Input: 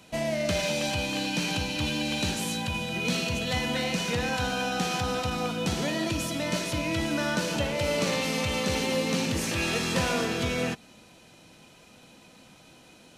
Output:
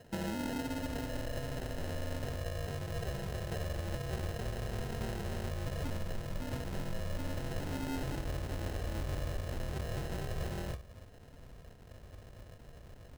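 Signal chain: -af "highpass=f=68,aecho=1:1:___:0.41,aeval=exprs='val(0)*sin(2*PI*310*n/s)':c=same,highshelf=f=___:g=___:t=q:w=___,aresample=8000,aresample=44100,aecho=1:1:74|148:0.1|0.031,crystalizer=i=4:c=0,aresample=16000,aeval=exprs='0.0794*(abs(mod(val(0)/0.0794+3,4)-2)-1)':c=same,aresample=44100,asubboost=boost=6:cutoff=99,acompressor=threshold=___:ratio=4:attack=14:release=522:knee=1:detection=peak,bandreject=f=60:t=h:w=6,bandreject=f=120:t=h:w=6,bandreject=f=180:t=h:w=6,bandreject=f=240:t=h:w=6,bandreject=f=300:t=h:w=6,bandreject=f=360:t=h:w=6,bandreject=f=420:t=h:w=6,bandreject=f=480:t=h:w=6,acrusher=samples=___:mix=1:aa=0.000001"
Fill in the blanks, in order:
4.9, 1.7k, -10.5, 1.5, -34dB, 38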